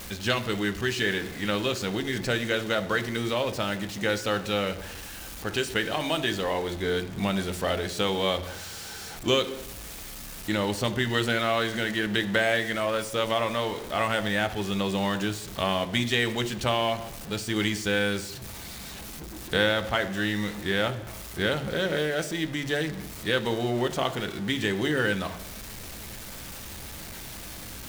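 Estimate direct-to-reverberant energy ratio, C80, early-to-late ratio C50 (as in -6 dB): 8.0 dB, 16.0 dB, 14.0 dB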